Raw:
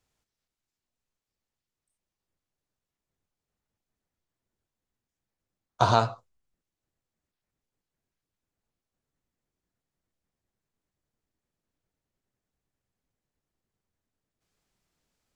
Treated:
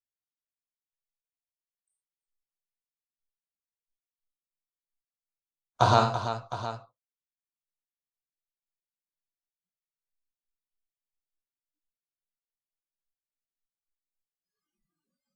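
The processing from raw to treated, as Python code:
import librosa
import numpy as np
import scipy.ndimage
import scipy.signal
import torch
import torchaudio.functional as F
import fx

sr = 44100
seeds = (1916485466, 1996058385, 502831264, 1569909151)

y = fx.echo_multitap(x, sr, ms=(41, 49, 89, 333, 711), db=(-10.5, -10.0, -11.0, -10.0, -13.0))
y = fx.noise_reduce_blind(y, sr, reduce_db=30)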